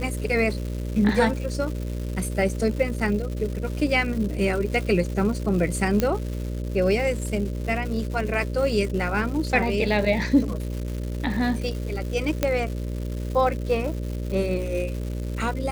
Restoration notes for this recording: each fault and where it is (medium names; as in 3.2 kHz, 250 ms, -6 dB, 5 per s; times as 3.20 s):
buzz 60 Hz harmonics 10 -29 dBFS
crackle 360 per s -32 dBFS
6.00 s: pop -8 dBFS
12.43 s: pop -7 dBFS